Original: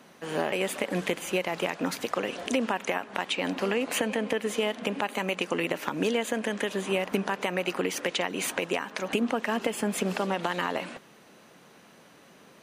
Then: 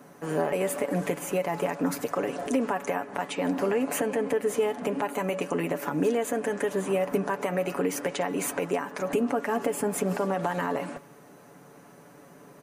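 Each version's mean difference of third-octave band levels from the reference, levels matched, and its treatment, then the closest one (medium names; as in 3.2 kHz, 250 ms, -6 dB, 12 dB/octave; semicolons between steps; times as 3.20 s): 3.5 dB: peaking EQ 3.4 kHz -14.5 dB 1.6 oct; comb 7 ms, depth 58%; de-hum 284.5 Hz, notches 19; in parallel at +0.5 dB: peak limiter -25.5 dBFS, peak gain reduction 11 dB; on the sum: trim -2 dB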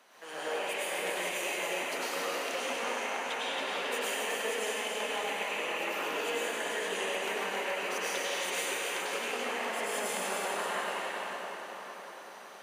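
9.5 dB: high-pass 590 Hz 12 dB/octave; compression 6:1, threshold -34 dBFS, peak gain reduction 9.5 dB; on a send: two-band feedback delay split 1.7 kHz, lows 557 ms, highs 274 ms, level -6 dB; on the sum: plate-style reverb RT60 2.7 s, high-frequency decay 0.8×, pre-delay 85 ms, DRR -9 dB; trim -5.5 dB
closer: first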